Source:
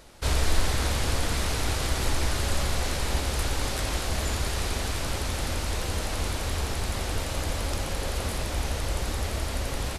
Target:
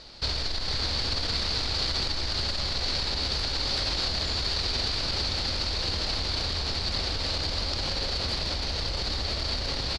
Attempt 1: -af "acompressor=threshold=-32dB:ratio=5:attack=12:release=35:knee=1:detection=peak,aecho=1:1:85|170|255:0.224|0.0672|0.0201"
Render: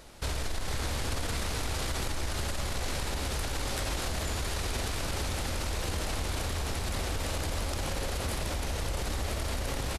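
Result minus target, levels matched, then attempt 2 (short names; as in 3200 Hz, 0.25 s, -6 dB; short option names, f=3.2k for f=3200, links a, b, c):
4000 Hz band -6.0 dB
-af "acompressor=threshold=-32dB:ratio=5:attack=12:release=35:knee=1:detection=peak,lowpass=f=4.5k:t=q:w=7.6,aecho=1:1:85|170|255:0.224|0.0672|0.0201"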